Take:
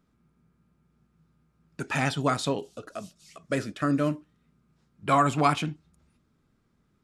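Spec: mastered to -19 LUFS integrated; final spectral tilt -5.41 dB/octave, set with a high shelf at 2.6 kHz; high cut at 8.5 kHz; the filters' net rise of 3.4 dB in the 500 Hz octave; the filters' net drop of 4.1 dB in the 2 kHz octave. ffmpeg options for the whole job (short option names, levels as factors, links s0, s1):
-af "lowpass=8500,equalizer=f=500:t=o:g=4.5,equalizer=f=2000:t=o:g=-8.5,highshelf=f=2600:g=6,volume=2.37"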